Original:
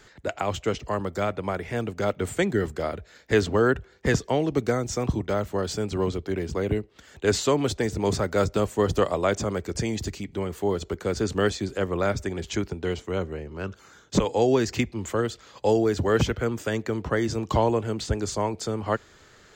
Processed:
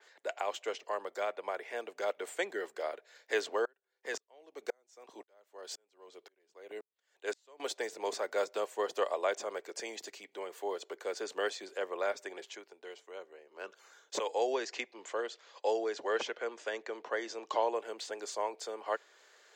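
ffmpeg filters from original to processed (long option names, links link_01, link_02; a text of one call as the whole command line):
ffmpeg -i in.wav -filter_complex "[0:a]asettb=1/sr,asplit=3[link_01][link_02][link_03];[link_01]atrim=end=3.654[link_04];[link_02]atrim=start=3.65:end=7.6,asetpts=PTS-STARTPTS,afade=type=in:duration=0.004:curve=qsin,afade=type=out:start_time=3.946:duration=0.004:curve=qsin,aeval=exprs='val(0)*pow(10,-40*if(lt(mod(-1.9*n/s,1),2*abs(-1.9)/1000),1-mod(-1.9*n/s,1)/(2*abs(-1.9)/1000),(mod(-1.9*n/s,1)-2*abs(-1.9)/1000)/(1-2*abs(-1.9)/1000))/20)':channel_layout=same[link_05];[link_03]atrim=start=7.596[link_06];[link_04][link_05]acrossfade=duration=0.004:curve1=hsin:curve2=qsin[link_07];[link_07][link_06]acrossfade=duration=0.004:curve1=qsin:curve2=hsin,asettb=1/sr,asplit=3[link_08][link_09][link_10];[link_08]atrim=end=14.534[link_11];[link_09]atrim=start=14.53:end=17.75,asetpts=PTS-STARTPTS,afade=type=in:duration=0.004:curve=qsin,afade=type=out:start_time=3.216:duration=0.004:curve=qsin,lowpass=frequency=7200:width=0.5412,lowpass=frequency=7200:width=1.3066[link_12];[link_10]atrim=start=17.746[link_13];[link_11][link_12]acrossfade=duration=0.004:curve1=hsin:curve2=qsin[link_14];[link_14][link_13]acrossfade=duration=0.004:curve1=qsin:curve2=hsin,asplit=3[link_15][link_16][link_17];[link_15]atrim=end=12.62,asetpts=PTS-STARTPTS,afade=type=out:start_time=12.43:duration=0.19:curve=qua:silence=0.398107[link_18];[link_16]atrim=start=12.62:end=13.43,asetpts=PTS-STARTPTS,volume=-8dB[link_19];[link_17]atrim=start=13.43,asetpts=PTS-STARTPTS,afade=type=in:duration=0.19:curve=qua:silence=0.398107[link_20];[link_18][link_19][link_20]concat=n=3:v=0:a=1,highpass=frequency=460:width=0.5412,highpass=frequency=460:width=1.3066,bandreject=frequency=1300:width=11,adynamicequalizer=threshold=0.00398:dfrequency=4200:dqfactor=0.7:tfrequency=4200:tqfactor=0.7:attack=5:release=100:ratio=0.375:range=2:mode=cutabove:tftype=highshelf,volume=-6.5dB" out.wav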